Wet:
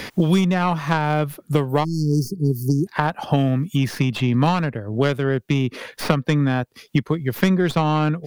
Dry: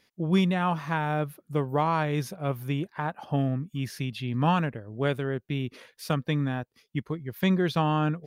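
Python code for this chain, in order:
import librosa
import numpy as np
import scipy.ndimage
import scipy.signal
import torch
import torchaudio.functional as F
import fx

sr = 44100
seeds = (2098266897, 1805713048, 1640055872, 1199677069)

y = fx.tracing_dist(x, sr, depth_ms=0.08)
y = fx.brickwall_bandstop(y, sr, low_hz=440.0, high_hz=4300.0, at=(1.83, 2.86), fade=0.02)
y = fx.band_squash(y, sr, depth_pct=100)
y = y * 10.0 ** (6.5 / 20.0)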